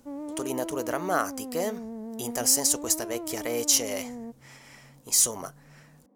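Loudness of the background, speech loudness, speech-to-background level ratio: −38.0 LKFS, −26.0 LKFS, 12.0 dB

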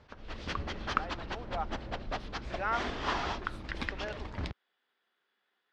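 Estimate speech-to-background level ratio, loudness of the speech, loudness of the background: −2.5 dB, −40.0 LKFS, −37.5 LKFS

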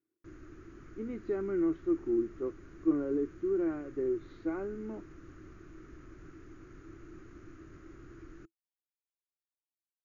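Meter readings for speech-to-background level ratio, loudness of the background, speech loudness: 18.5 dB, −52.5 LKFS, −34.0 LKFS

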